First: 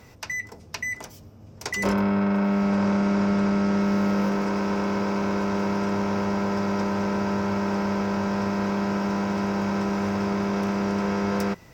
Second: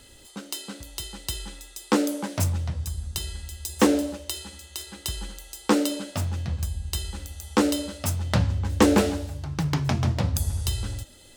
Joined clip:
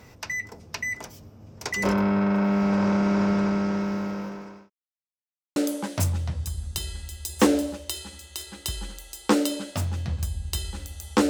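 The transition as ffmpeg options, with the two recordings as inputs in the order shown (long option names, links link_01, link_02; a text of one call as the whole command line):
ffmpeg -i cue0.wav -i cue1.wav -filter_complex "[0:a]apad=whole_dur=11.29,atrim=end=11.29,asplit=2[link_01][link_02];[link_01]atrim=end=4.7,asetpts=PTS-STARTPTS,afade=type=out:start_time=3.27:duration=1.43[link_03];[link_02]atrim=start=4.7:end=5.56,asetpts=PTS-STARTPTS,volume=0[link_04];[1:a]atrim=start=1.96:end=7.69,asetpts=PTS-STARTPTS,afade=type=in:duration=0.004:curve=hsin[link_05];[link_03][link_04][link_05]concat=n=3:v=0:a=1" out.wav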